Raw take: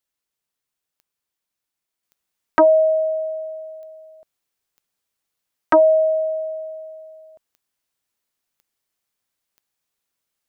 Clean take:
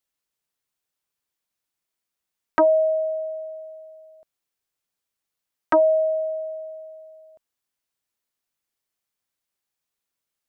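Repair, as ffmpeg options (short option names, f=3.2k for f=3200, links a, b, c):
-af "adeclick=t=4,asetnsamples=n=441:p=0,asendcmd='2.03 volume volume -4dB',volume=0dB"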